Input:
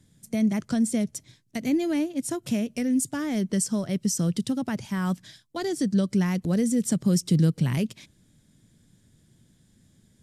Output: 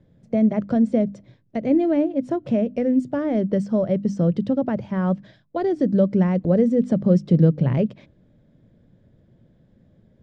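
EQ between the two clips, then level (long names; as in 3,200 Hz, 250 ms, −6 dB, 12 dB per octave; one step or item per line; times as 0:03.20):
head-to-tape spacing loss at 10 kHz 42 dB
parametric band 560 Hz +11.5 dB 0.66 octaves
mains-hum notches 50/100/150/200/250/300 Hz
+5.5 dB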